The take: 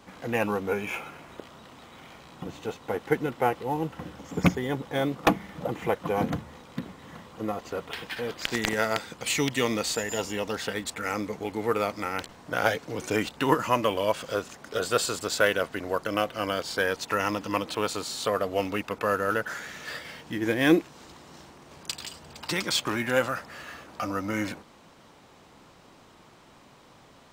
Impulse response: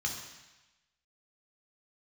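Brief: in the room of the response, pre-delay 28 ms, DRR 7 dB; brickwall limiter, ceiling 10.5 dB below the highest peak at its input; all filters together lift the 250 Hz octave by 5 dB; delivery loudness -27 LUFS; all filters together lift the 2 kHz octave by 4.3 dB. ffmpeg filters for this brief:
-filter_complex "[0:a]equalizer=f=250:t=o:g=6.5,equalizer=f=2000:t=o:g=5.5,alimiter=limit=0.237:level=0:latency=1,asplit=2[s0][s1];[1:a]atrim=start_sample=2205,adelay=28[s2];[s1][s2]afir=irnorm=-1:irlink=0,volume=0.282[s3];[s0][s3]amix=inputs=2:normalize=0"

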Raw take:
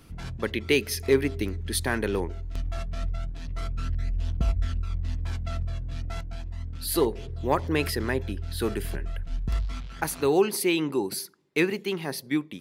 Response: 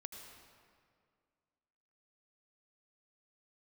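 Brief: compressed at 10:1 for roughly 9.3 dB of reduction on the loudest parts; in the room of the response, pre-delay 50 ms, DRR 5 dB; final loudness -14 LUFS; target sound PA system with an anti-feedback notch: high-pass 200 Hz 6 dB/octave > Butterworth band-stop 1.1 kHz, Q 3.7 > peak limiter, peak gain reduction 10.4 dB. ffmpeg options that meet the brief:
-filter_complex "[0:a]acompressor=threshold=0.0562:ratio=10,asplit=2[s0][s1];[1:a]atrim=start_sample=2205,adelay=50[s2];[s1][s2]afir=irnorm=-1:irlink=0,volume=0.891[s3];[s0][s3]amix=inputs=2:normalize=0,highpass=f=200:p=1,asuperstop=centerf=1100:order=8:qfactor=3.7,volume=14.1,alimiter=limit=0.75:level=0:latency=1"

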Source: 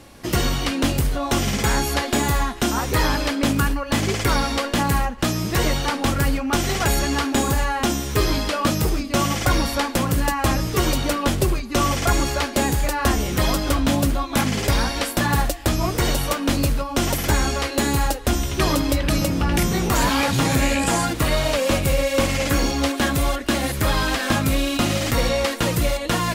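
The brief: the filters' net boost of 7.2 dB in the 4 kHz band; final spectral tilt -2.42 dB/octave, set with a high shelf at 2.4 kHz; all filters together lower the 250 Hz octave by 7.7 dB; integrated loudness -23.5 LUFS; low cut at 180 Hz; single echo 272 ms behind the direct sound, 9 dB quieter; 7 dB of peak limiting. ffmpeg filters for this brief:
-af "highpass=180,equalizer=f=250:t=o:g=-8.5,highshelf=f=2400:g=3.5,equalizer=f=4000:t=o:g=6,alimiter=limit=0.266:level=0:latency=1,aecho=1:1:272:0.355,volume=0.75"

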